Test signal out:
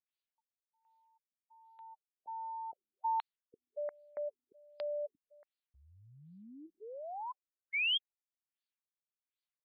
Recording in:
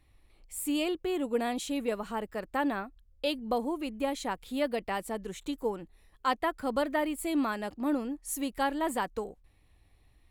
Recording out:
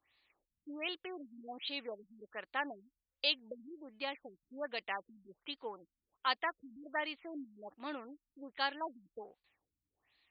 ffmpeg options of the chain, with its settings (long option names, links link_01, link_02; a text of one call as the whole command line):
ffmpeg -i in.wav -af "aderivative,afftfilt=real='re*lt(b*sr/1024,290*pow(5000/290,0.5+0.5*sin(2*PI*1.3*pts/sr)))':imag='im*lt(b*sr/1024,290*pow(5000/290,0.5+0.5*sin(2*PI*1.3*pts/sr)))':win_size=1024:overlap=0.75,volume=11dB" out.wav